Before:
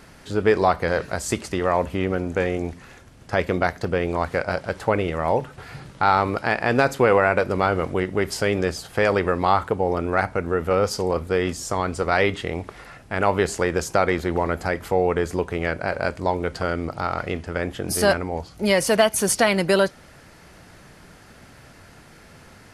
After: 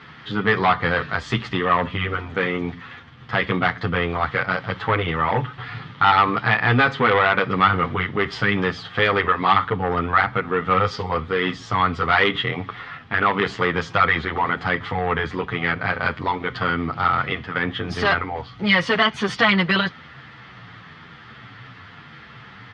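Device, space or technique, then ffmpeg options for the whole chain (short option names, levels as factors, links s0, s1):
barber-pole flanger into a guitar amplifier: -filter_complex "[0:a]asplit=2[s0][s1];[s1]adelay=9.5,afreqshift=-1[s2];[s0][s2]amix=inputs=2:normalize=1,asoftclip=type=tanh:threshold=0.15,highpass=100,equalizer=f=120:t=q:w=4:g=9,equalizer=f=360:t=q:w=4:g=-6,equalizer=f=590:t=q:w=4:g=-10,equalizer=f=1200:t=q:w=4:g=9,equalizer=f=1900:t=q:w=4:g=7,equalizer=f=3300:t=q:w=4:g=9,lowpass=f=4100:w=0.5412,lowpass=f=4100:w=1.3066,volume=2"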